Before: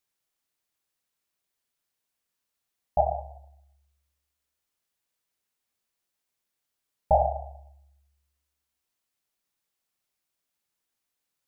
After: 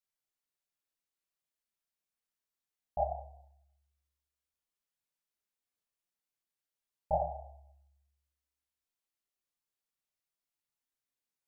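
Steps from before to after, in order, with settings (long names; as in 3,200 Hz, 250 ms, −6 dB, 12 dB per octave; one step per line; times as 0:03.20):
multi-voice chorus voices 6, 0.36 Hz, delay 28 ms, depth 4.8 ms
level −7 dB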